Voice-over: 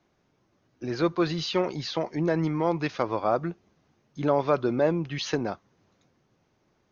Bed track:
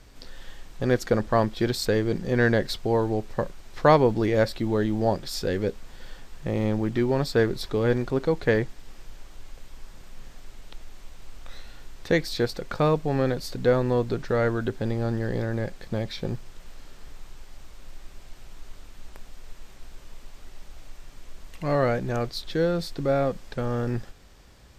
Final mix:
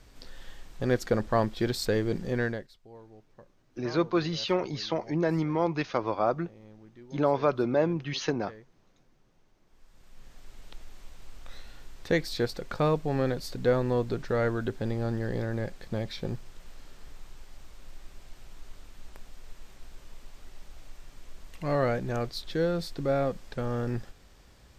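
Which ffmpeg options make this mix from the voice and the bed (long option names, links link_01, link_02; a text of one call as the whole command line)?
ffmpeg -i stem1.wav -i stem2.wav -filter_complex "[0:a]adelay=2950,volume=-1.5dB[link_01];[1:a]volume=19.5dB,afade=type=out:start_time=2.24:duration=0.44:silence=0.0707946,afade=type=in:start_time=9.66:duration=0.98:silence=0.0707946[link_02];[link_01][link_02]amix=inputs=2:normalize=0" out.wav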